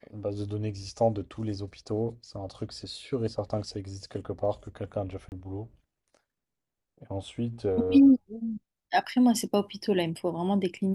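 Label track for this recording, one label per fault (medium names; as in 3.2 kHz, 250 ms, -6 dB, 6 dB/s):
5.290000	5.320000	dropout 29 ms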